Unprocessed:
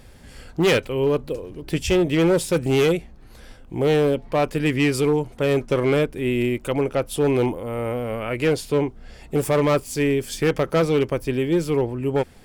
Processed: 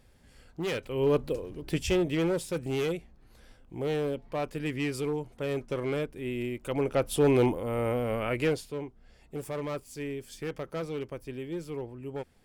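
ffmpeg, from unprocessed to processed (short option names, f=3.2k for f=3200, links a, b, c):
-af "volume=5.5dB,afade=t=in:st=0.77:d=0.41:silence=0.281838,afade=t=out:st=1.18:d=1.25:silence=0.375837,afade=t=in:st=6.58:d=0.49:silence=0.375837,afade=t=out:st=8.26:d=0.46:silence=0.237137"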